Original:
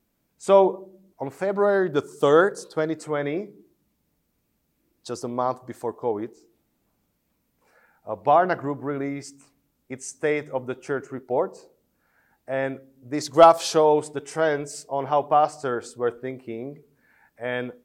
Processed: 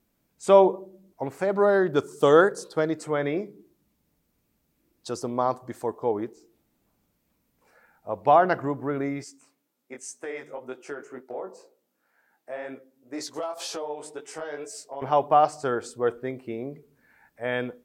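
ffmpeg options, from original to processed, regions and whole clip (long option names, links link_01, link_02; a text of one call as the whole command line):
ffmpeg -i in.wav -filter_complex "[0:a]asettb=1/sr,asplit=3[link_01][link_02][link_03];[link_01]atrim=end=9.244[link_04];[link_02]atrim=start=9.24:end=15.02,asetpts=PTS-STARTPTS,afade=type=in:duration=0.004:curve=qsin,afade=type=out:start_time=5.776:duration=0.004:curve=qsin,highpass=300,acompressor=threshold=-27dB:ratio=6:attack=3.2:release=140:knee=1:detection=peak,flanger=delay=15.5:depth=5.8:speed=2[link_05];[link_03]atrim=start=15.016[link_06];[link_04][link_05]acrossfade=duration=0.004:curve1=hsin:curve2=qsin[link_07];[link_07][link_06]acrossfade=duration=0.004:curve1=qsin:curve2=hsin" out.wav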